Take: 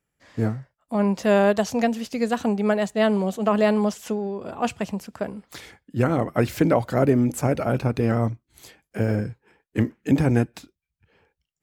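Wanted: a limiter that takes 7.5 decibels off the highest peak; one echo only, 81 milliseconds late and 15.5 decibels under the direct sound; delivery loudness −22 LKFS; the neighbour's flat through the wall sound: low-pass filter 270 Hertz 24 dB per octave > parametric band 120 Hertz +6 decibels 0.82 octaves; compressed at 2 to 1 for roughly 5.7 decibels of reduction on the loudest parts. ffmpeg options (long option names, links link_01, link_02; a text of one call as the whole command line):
ffmpeg -i in.wav -af "acompressor=threshold=-24dB:ratio=2,alimiter=limit=-16.5dB:level=0:latency=1,lowpass=frequency=270:width=0.5412,lowpass=frequency=270:width=1.3066,equalizer=frequency=120:width_type=o:width=0.82:gain=6,aecho=1:1:81:0.168,volume=7.5dB" out.wav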